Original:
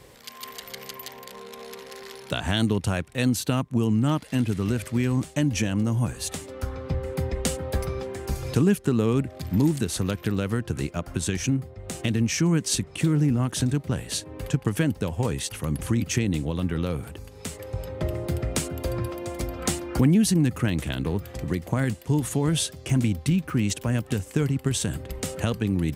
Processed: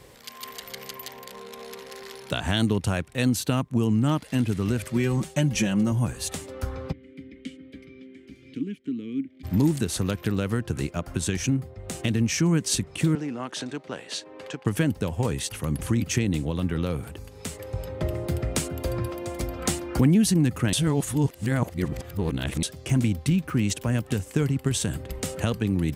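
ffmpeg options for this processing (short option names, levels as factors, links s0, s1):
-filter_complex "[0:a]asettb=1/sr,asplit=3[s0][s1][s2];[s0]atrim=end=4.904[s3];[s1]atrim=start=4.9:end=5.92,asetpts=PTS-STARTPTS,afade=t=in:d=0.004:c=qsin,afade=t=out:st=1.016:d=0.004:c=qsin,aecho=1:1:5.4:0.65,atrim=end_sample=44982[s4];[s2]atrim=start=5.916[s5];[s3][s4]acrossfade=d=0.004:c1=hsin:c2=qsin[s6];[s6][s5]acrossfade=d=0.004:c1=qsin:c2=hsin,asplit=3[s7][s8][s9];[s7]afade=t=out:st=6.91:d=0.02[s10];[s8]asplit=3[s11][s12][s13];[s11]bandpass=f=270:t=q:w=8,volume=1[s14];[s12]bandpass=f=2290:t=q:w=8,volume=0.501[s15];[s13]bandpass=f=3010:t=q:w=8,volume=0.355[s16];[s14][s15][s16]amix=inputs=3:normalize=0,afade=t=in:st=6.91:d=0.02,afade=t=out:st=9.43:d=0.02[s17];[s9]afade=t=in:st=9.43:d=0.02[s18];[s10][s17][s18]amix=inputs=3:normalize=0,asettb=1/sr,asplit=3[s19][s20][s21];[s19]atrim=end=13.154[s22];[s20]atrim=start=13.15:end=14.66,asetpts=PTS-STARTPTS,afade=t=in:d=0.004:c=qsin,afade=t=out:st=1.506:d=0.004:c=qsin,highpass=390,lowpass=5300[s23];[s21]atrim=start=14.656[s24];[s22][s23]acrossfade=d=0.004:c1=hsin:c2=qsin[s25];[s25][s24]acrossfade=d=0.004:c1=qsin:c2=hsin,asplit=3[s26][s27][s28];[s26]atrim=end=20.732[s29];[s27]atrim=start=20.728:end=22.632,asetpts=PTS-STARTPTS,areverse[s30];[s28]atrim=start=22.628[s31];[s29][s30]acrossfade=d=0.004:c1=hsin:c2=hsin[s32];[s32][s31]acrossfade=d=0.004:c1=hsin:c2=hsin"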